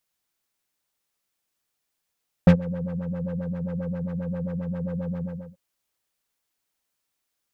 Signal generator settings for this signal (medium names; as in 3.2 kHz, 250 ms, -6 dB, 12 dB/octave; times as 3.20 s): synth patch with filter wobble F3, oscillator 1 triangle, oscillator 2 triangle, interval +19 st, oscillator 2 level -7.5 dB, sub -14.5 dB, noise -14 dB, filter lowpass, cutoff 440 Hz, Q 1.5, filter envelope 1 oct, filter sustain 25%, attack 3 ms, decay 0.09 s, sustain -21.5 dB, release 0.36 s, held 2.73 s, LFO 7.5 Hz, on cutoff 1.7 oct